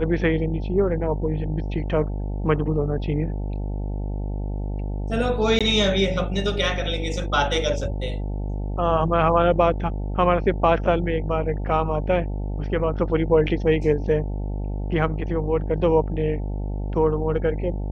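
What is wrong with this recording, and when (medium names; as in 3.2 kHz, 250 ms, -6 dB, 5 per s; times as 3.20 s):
buzz 50 Hz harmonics 18 -27 dBFS
5.59–5.61 s: dropout 16 ms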